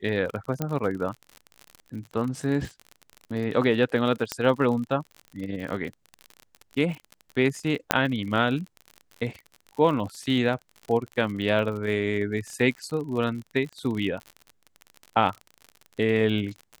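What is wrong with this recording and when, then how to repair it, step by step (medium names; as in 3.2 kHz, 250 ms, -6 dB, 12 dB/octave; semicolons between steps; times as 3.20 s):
crackle 50 per s -32 dBFS
0.62 s: pop -13 dBFS
4.32 s: pop -10 dBFS
7.91 s: pop -3 dBFS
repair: de-click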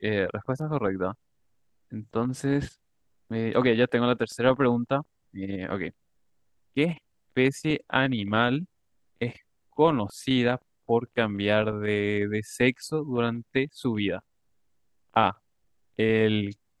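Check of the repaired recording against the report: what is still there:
0.62 s: pop
4.32 s: pop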